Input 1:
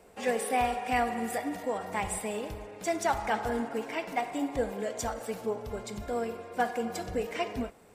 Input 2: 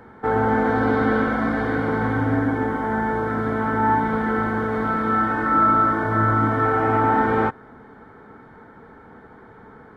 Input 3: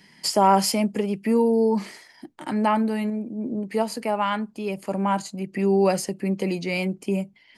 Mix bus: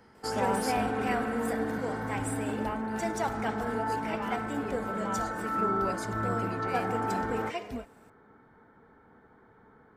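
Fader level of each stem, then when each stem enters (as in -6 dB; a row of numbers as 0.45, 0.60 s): -4.0, -13.0, -14.5 dB; 0.15, 0.00, 0.00 s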